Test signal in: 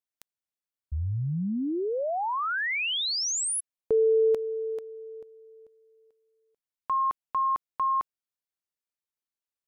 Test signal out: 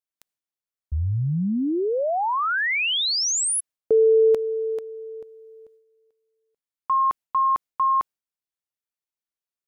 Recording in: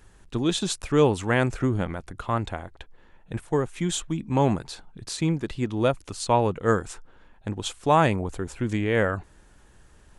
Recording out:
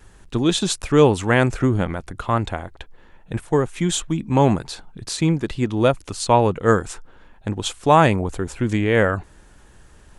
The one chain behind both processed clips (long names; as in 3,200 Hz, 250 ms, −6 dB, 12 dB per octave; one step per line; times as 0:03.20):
noise gate with hold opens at −50 dBFS, range −8 dB
level +5.5 dB